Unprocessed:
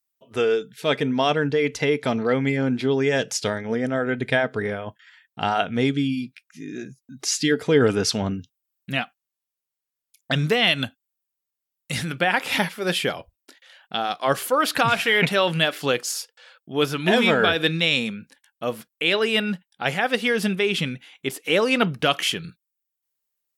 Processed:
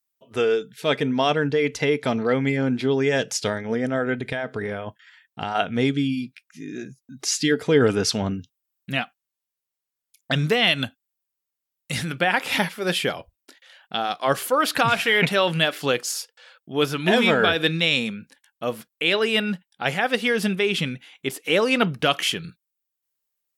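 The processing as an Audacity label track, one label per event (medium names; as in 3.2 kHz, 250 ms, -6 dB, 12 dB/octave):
4.170000	5.550000	compression, threshold -23 dBFS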